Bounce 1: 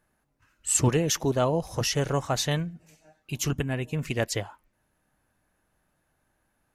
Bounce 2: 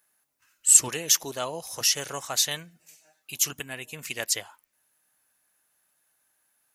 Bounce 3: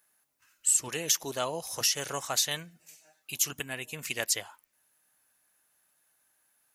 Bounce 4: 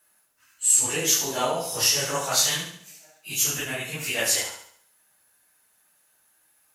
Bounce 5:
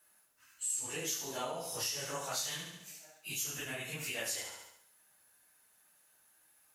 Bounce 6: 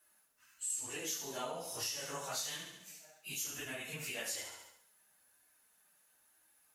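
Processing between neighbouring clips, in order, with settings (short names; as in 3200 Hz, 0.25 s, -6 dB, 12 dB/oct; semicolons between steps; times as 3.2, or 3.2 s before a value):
tilt +4.5 dB/oct; gain -4.5 dB
compressor 4:1, threshold -23 dBFS, peak gain reduction 12 dB
phase scrambler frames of 0.1 s; on a send: flutter echo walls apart 12 m, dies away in 0.61 s; on the sum: gain +6 dB
compressor 2.5:1, threshold -37 dBFS, peak gain reduction 14.5 dB; gain -3.5 dB
flange 1.1 Hz, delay 2.7 ms, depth 2.5 ms, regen -49%; gain +1.5 dB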